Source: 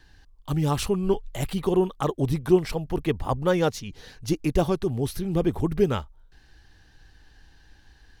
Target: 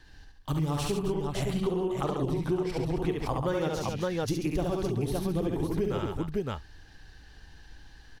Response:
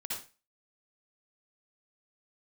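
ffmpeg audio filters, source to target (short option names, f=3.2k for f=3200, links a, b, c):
-af "aecho=1:1:45|69|137|269|564:0.316|0.708|0.422|0.224|0.562,acompressor=threshold=-26dB:ratio=6,asetnsamples=n=441:p=0,asendcmd='1.14 highshelf g -12;3.09 highshelf g -2.5',highshelf=f=11k:g=-3"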